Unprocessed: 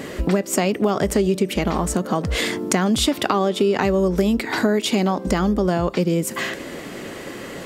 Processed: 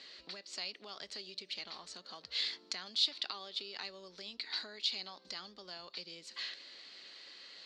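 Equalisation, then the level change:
resonant band-pass 4,300 Hz, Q 7.4
high-frequency loss of the air 110 metres
+3.5 dB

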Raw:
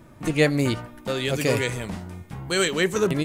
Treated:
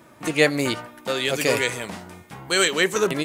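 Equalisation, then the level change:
high-pass filter 490 Hz 6 dB per octave
+4.5 dB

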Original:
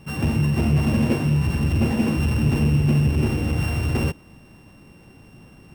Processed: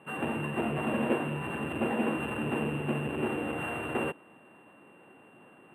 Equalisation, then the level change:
band-pass filter 400–7,800 Hz
Butterworth band-reject 5,400 Hz, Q 0.72
parametric band 2,200 Hz −7 dB 0.21 octaves
0.0 dB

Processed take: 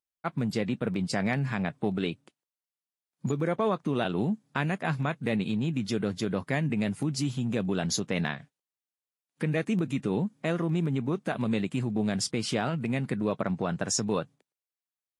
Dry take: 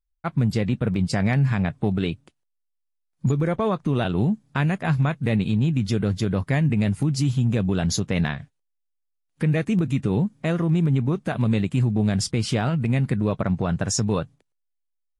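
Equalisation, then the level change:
high-pass filter 200 Hz 12 dB per octave
−3.0 dB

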